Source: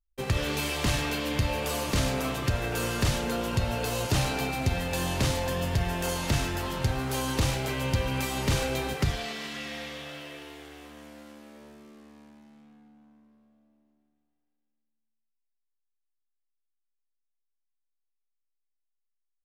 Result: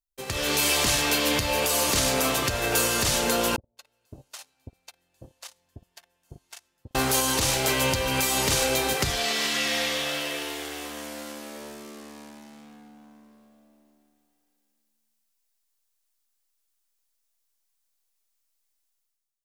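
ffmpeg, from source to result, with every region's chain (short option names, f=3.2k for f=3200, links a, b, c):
-filter_complex "[0:a]asettb=1/sr,asplit=3[a][b][c];[a]atrim=end=3.564[d];[b]atrim=start=3.56:end=6.95,asetpts=PTS-STARTPTS,afade=t=in:d=0.004:c=qsin,afade=t=out:st=3.386:d=0.004:c=qsin,agate=range=-51dB:threshold=-21dB:ratio=16:release=100:detection=peak,acompressor=threshold=-41dB:ratio=4:attack=3.2:release=140:knee=1:detection=peak,acrossover=split=650[e][f];[f]adelay=210[g];[e][g]amix=inputs=2:normalize=0,atrim=end_sample=149499[h];[c]atrim=start=6.946[i];[d][h]acrossfade=d=0.004:c1=hsin:c2=qsin[j];[j][i]acrossfade=d=0.004:c1=qsin:c2=hsin,dynaudnorm=f=140:g=7:m=15dB,bass=f=250:g=-9,treble=f=4k:g=8,alimiter=limit=-7.5dB:level=0:latency=1:release=359,volume=-4dB"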